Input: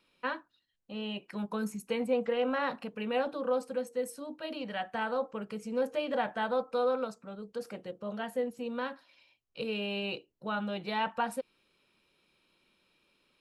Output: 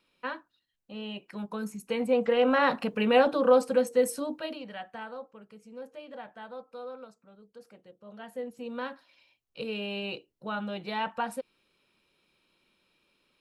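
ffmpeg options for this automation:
-af "volume=11.9,afade=t=in:st=1.74:d=1.16:silence=0.298538,afade=t=out:st=4.2:d=0.39:silence=0.237137,afade=t=out:st=4.59:d=0.74:silence=0.354813,afade=t=in:st=8.03:d=0.8:silence=0.251189"

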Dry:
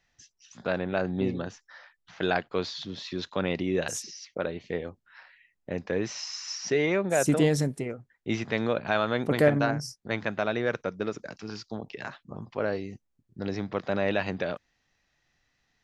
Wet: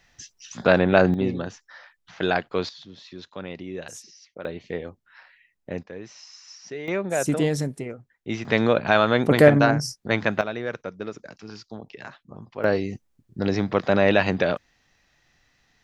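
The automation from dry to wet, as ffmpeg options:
-af "asetnsamples=n=441:p=0,asendcmd='1.14 volume volume 3.5dB;2.69 volume volume -7dB;4.45 volume volume 1dB;5.83 volume volume -9.5dB;6.88 volume volume 0dB;8.45 volume volume 7.5dB;10.41 volume volume -2dB;12.64 volume volume 8.5dB',volume=3.76"

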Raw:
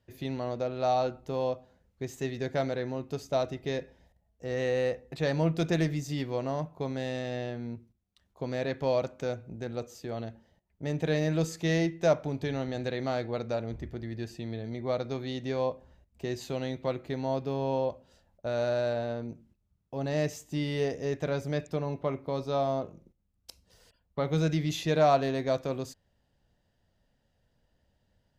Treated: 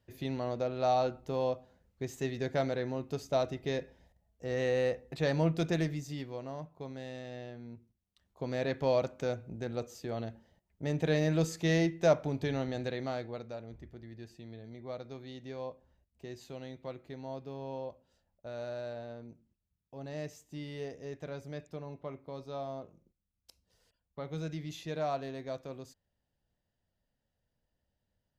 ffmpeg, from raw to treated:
-af "volume=2.24,afade=t=out:st=5.39:d=0.99:silence=0.398107,afade=t=in:st=7.69:d=1:silence=0.375837,afade=t=out:st=12.57:d=0.95:silence=0.316228"

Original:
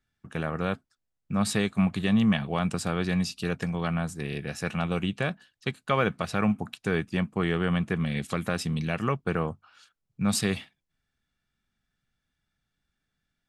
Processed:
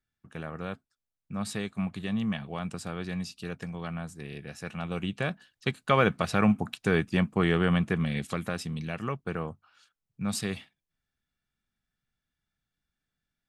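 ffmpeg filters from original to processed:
-af "volume=1.26,afade=t=in:st=4.75:d=1.07:silence=0.334965,afade=t=out:st=7.59:d=1.09:silence=0.421697"

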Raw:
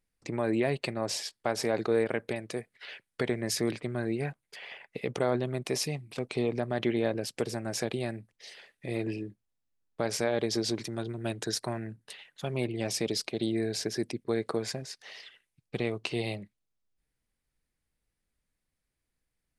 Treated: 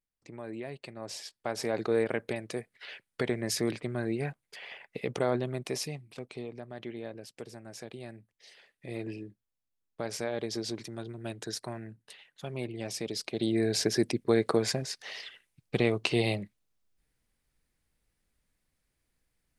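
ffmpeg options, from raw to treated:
-af "volume=6.68,afade=t=in:st=0.87:d=1.14:silence=0.266073,afade=t=out:st=5.31:d=1.18:silence=0.266073,afade=t=in:st=7.86:d=1.11:silence=0.446684,afade=t=in:st=13.13:d=0.72:silence=0.316228"

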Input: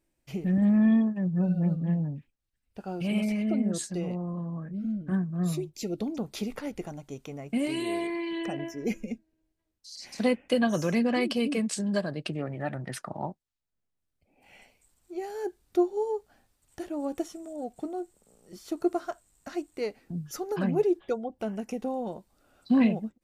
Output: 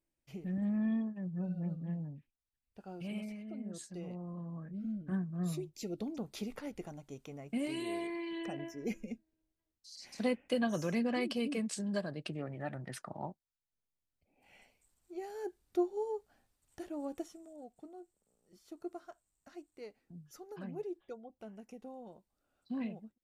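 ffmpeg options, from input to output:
-af "volume=0.944,afade=t=out:st=3.04:d=0.41:silence=0.446684,afade=t=in:st=3.45:d=1.26:silence=0.281838,afade=t=out:st=16.96:d=0.78:silence=0.354813"

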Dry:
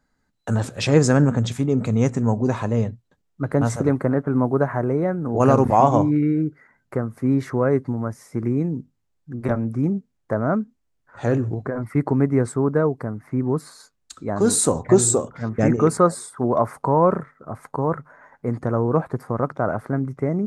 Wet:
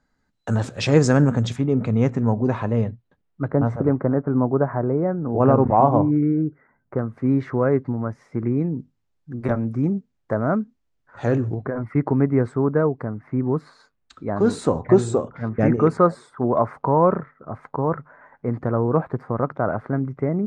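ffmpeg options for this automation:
-af "asetnsamples=n=441:p=0,asendcmd='1.56 lowpass f 3100;3.48 lowpass f 1300;6.99 lowpass f 2900;8.79 lowpass f 5900;11.55 lowpass f 2800',lowpass=6800"

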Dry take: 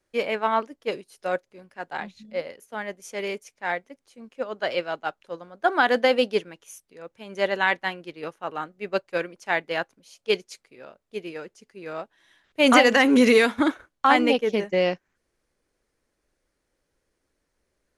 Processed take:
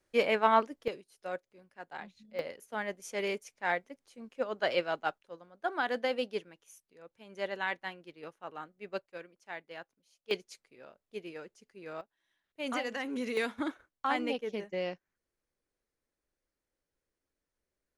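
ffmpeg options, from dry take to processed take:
-af "asetnsamples=n=441:p=0,asendcmd='0.88 volume volume -11.5dB;2.39 volume volume -3.5dB;5.18 volume volume -12dB;9.06 volume volume -18.5dB;10.31 volume volume -8.5dB;12.01 volume volume -19dB;13.37 volume volume -13dB',volume=0.841"

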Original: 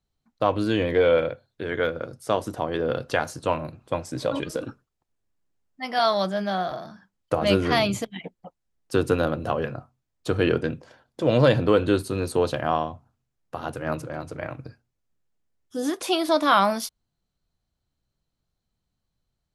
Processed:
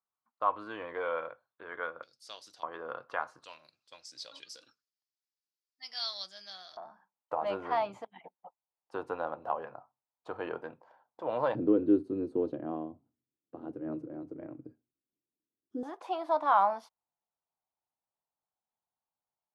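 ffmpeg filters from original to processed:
-af "asetnsamples=n=441:p=0,asendcmd='2.03 bandpass f 4600;2.63 bandpass f 1100;3.44 bandpass f 4900;6.77 bandpass f 890;11.55 bandpass f 310;15.83 bandpass f 870',bandpass=f=1100:t=q:w=3.7:csg=0"

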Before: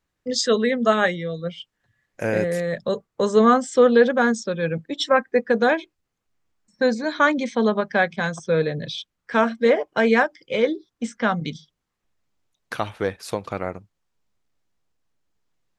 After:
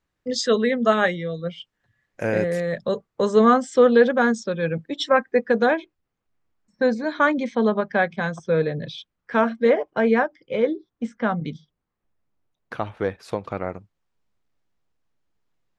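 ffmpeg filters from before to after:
-af "asetnsamples=n=441:p=0,asendcmd='5.66 lowpass f 2200;9.9 lowpass f 1200;12.97 lowpass f 2100;13.7 lowpass f 3700',lowpass=f=5000:p=1"

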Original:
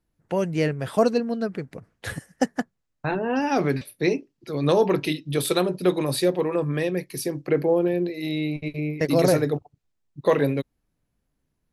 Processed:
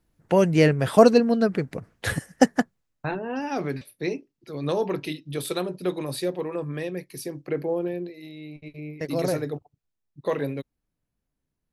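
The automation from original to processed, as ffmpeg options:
-af "volume=5.31,afade=t=out:st=2.48:d=0.73:silence=0.266073,afade=t=out:st=7.89:d=0.44:silence=0.334965,afade=t=in:st=8.33:d=0.89:silence=0.354813"

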